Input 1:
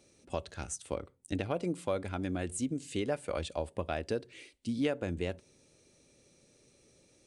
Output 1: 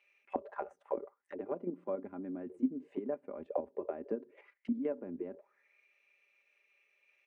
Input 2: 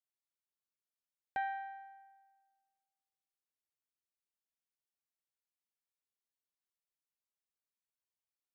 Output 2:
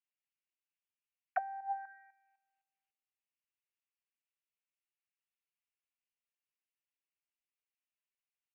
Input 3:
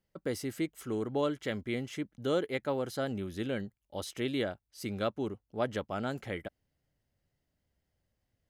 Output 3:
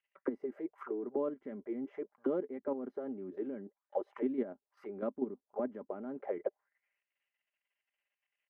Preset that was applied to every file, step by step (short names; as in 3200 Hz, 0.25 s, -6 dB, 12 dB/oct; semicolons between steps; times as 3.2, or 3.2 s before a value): comb 5 ms, depth 47%; level quantiser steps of 10 dB; auto-wah 260–2800 Hz, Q 5.7, down, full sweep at -36.5 dBFS; graphic EQ 125/250/500/1000/2000/4000/8000 Hz -10/-3/+6/+10/+9/-8/-9 dB; gain +9 dB